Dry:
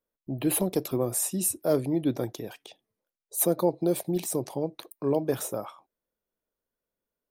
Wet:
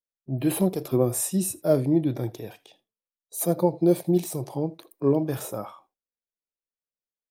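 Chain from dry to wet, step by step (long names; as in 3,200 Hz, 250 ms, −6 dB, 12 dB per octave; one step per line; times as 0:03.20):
noise gate with hold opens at −49 dBFS
harmonic and percussive parts rebalanced percussive −13 dB
on a send: single-tap delay 80 ms −24 dB
on the sum: level +7 dB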